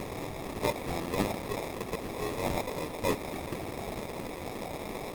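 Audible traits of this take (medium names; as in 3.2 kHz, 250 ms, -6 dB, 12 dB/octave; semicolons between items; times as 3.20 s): a quantiser's noise floor 6-bit, dither triangular; phasing stages 8, 1.2 Hz, lowest notch 240–1600 Hz; aliases and images of a low sample rate 1.5 kHz, jitter 0%; Opus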